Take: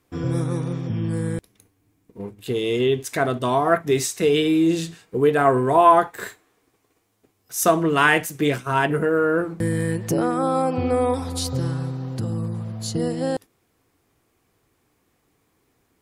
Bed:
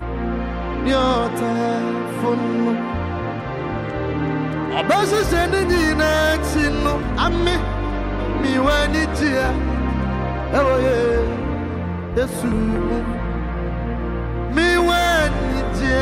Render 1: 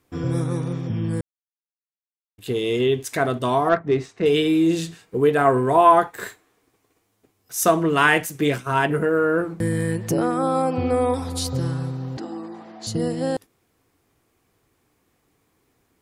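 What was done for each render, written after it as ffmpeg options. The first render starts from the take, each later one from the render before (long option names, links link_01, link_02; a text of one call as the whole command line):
ffmpeg -i in.wav -filter_complex "[0:a]asettb=1/sr,asplit=3[link_01][link_02][link_03];[link_01]atrim=end=3.694[link_04];[link_02]atrim=start=3.69:end=4.26,asetpts=PTS-STARTPTS,afade=type=in:duration=0.004:curve=qsin,afade=type=out:start_time=0.566:duration=0.004:curve=qsin,adynamicsmooth=sensitivity=0.5:basefreq=1700[link_05];[link_03]atrim=start=4.256[link_06];[link_04][link_05]acrossfade=duration=0.004:curve1=hsin:curve2=qsin[link_07];[link_07][link_06]acrossfade=duration=0.004:curve1=qsin:curve2=hsin,asettb=1/sr,asplit=3[link_08][link_09][link_10];[link_08]atrim=end=12.174[link_11];[link_09]atrim=start=12.17:end=12.87,asetpts=PTS-STARTPTS,afade=type=in:duration=0.004:curve=qsin,afade=type=out:start_time=0.696:duration=0.004:curve=qsin,highpass=frequency=290:width=0.5412,highpass=frequency=290:width=1.3066,equalizer=frequency=300:width_type=q:width=4:gain=10,equalizer=frequency=510:width_type=q:width=4:gain=-7,equalizer=frequency=770:width_type=q:width=4:gain=9,equalizer=frequency=1900:width_type=q:width=4:gain=6,lowpass=frequency=6500:width=0.5412,lowpass=frequency=6500:width=1.3066[link_12];[link_10]atrim=start=12.866[link_13];[link_11][link_12]acrossfade=duration=0.004:curve1=hsin:curve2=qsin[link_14];[link_14][link_13]acrossfade=duration=0.004:curve1=qsin:curve2=hsin,asplit=3[link_15][link_16][link_17];[link_15]atrim=end=1.21,asetpts=PTS-STARTPTS,afade=type=out:start_time=1.206:duration=0.004:curve=hsin[link_18];[link_16]atrim=start=1.21:end=2.38,asetpts=PTS-STARTPTS,volume=0[link_19];[link_17]atrim=start=2.38,asetpts=PTS-STARTPTS,afade=type=in:duration=0.004:curve=hsin[link_20];[link_18][link_19][link_20]concat=n=3:v=0:a=1" out.wav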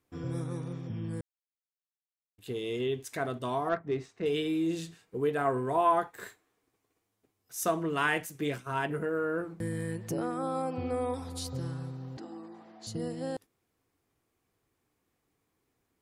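ffmpeg -i in.wav -af "volume=-11.5dB" out.wav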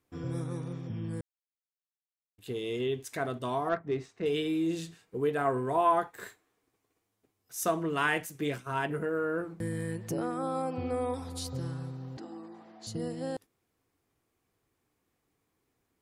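ffmpeg -i in.wav -af anull out.wav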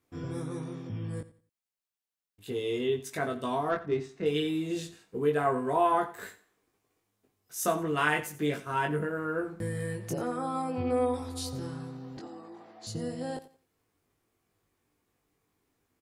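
ffmpeg -i in.wav -filter_complex "[0:a]asplit=2[link_01][link_02];[link_02]adelay=20,volume=-3.5dB[link_03];[link_01][link_03]amix=inputs=2:normalize=0,aecho=1:1:88|176|264:0.15|0.0404|0.0109" out.wav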